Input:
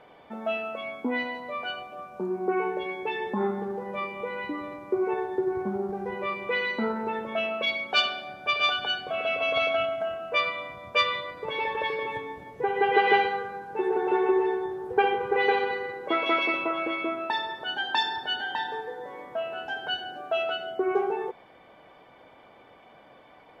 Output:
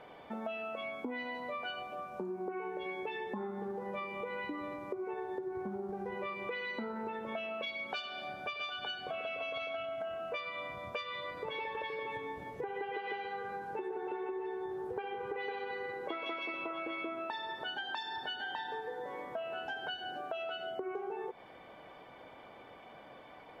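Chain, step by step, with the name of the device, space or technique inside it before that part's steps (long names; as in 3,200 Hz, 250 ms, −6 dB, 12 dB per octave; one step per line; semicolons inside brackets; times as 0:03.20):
serial compression, peaks first (downward compressor, threshold −31 dBFS, peak gain reduction 15 dB; downward compressor 2 to 1, threshold −40 dBFS, peak gain reduction 7.5 dB)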